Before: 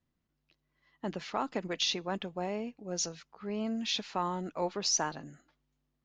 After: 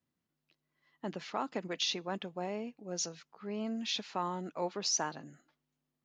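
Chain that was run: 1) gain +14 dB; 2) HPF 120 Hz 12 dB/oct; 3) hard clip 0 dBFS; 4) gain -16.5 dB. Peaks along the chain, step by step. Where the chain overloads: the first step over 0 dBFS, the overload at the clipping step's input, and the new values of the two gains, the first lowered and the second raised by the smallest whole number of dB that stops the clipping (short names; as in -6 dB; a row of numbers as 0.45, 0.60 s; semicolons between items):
-2.5, -2.5, -2.5, -19.0 dBFS; no overload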